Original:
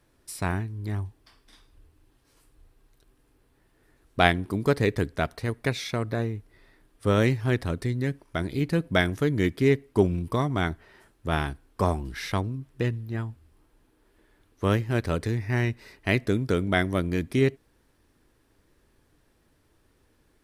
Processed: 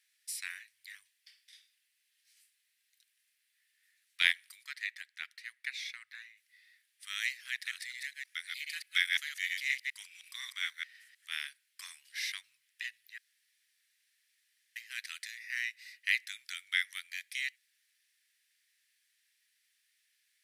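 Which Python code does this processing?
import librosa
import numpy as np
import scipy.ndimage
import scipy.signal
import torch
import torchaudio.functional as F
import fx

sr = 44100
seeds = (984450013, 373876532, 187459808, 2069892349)

y = fx.high_shelf(x, sr, hz=3600.0, db=-12.0, at=(4.62, 6.36), fade=0.02)
y = fx.reverse_delay(y, sr, ms=104, wet_db=-2.0, at=(7.51, 11.27))
y = fx.edit(y, sr, fx.room_tone_fill(start_s=13.18, length_s=1.58), tone=tone)
y = scipy.signal.sosfilt(scipy.signal.ellip(4, 1.0, 70, 1900.0, 'highpass', fs=sr, output='sos'), y)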